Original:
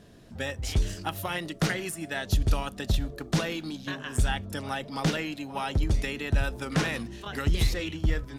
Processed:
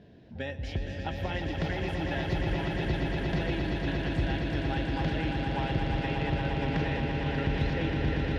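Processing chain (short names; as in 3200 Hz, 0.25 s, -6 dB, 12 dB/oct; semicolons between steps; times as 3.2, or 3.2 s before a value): HPF 51 Hz; bell 1200 Hz -14.5 dB 0.32 oct; compressor, threshold -28 dBFS, peak gain reduction 8.5 dB; air absorption 270 m; swelling echo 0.117 s, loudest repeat 8, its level -7 dB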